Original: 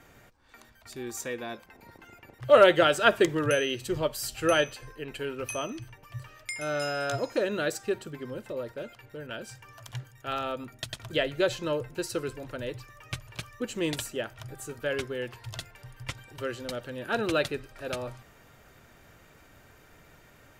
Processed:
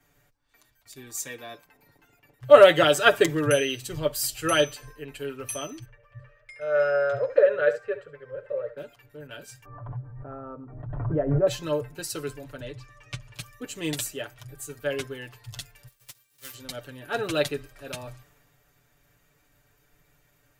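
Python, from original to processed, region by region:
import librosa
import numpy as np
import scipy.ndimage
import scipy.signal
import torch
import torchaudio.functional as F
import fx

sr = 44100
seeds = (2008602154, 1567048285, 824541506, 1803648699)

y = fx.chain(x, sr, fx.curve_eq(hz=(100.0, 180.0, 300.0, 520.0, 760.0, 1600.0, 3900.0, 14000.0), db=(0, -15, -20, 12, -8, 3, -12, -30)),
    fx.echo_single(ms=70, db=-13.0), at=(5.85, 8.77))
y = fx.chain(y, sr, fx.lowpass(hz=1100.0, slope=24),
    fx.pre_swell(db_per_s=34.0), at=(9.65, 11.47))
y = fx.chain(y, sr, fx.lowpass(hz=6800.0, slope=12),
    fx.band_squash(depth_pct=40), at=(12.6, 13.34))
y = fx.envelope_flatten(y, sr, power=0.3, at=(15.87, 16.53), fade=0.02)
y = fx.upward_expand(y, sr, threshold_db=-44.0, expansion=1.5, at=(15.87, 16.53), fade=0.02)
y = fx.high_shelf(y, sr, hz=7600.0, db=7.0)
y = y + 0.71 * np.pad(y, (int(6.9 * sr / 1000.0), 0))[:len(y)]
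y = fx.band_widen(y, sr, depth_pct=40)
y = y * 10.0 ** (-2.0 / 20.0)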